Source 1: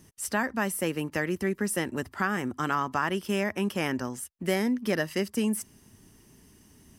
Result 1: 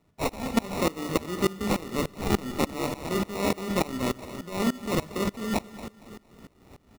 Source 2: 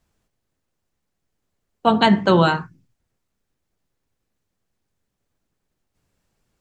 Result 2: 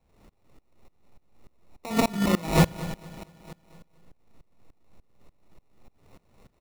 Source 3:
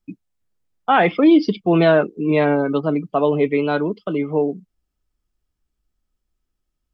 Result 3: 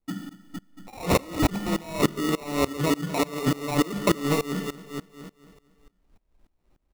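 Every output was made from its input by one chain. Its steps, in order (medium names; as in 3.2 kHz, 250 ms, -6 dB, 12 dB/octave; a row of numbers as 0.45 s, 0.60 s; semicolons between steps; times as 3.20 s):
hum notches 50/100/150/200 Hz; dynamic bell 2.8 kHz, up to +8 dB, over -44 dBFS, Q 2.5; compressor with a negative ratio -28 dBFS, ratio -1; sample-rate reducer 1.6 kHz, jitter 0%; saturation -17.5 dBFS; on a send: feedback delay 230 ms, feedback 53%, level -11.5 dB; on the sum: Schroeder reverb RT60 0.75 s, combs from 31 ms, DRR 10 dB; sawtooth tremolo in dB swelling 3.4 Hz, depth 23 dB; peak normalisation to -9 dBFS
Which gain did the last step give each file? +9.0 dB, +10.5 dB, +9.0 dB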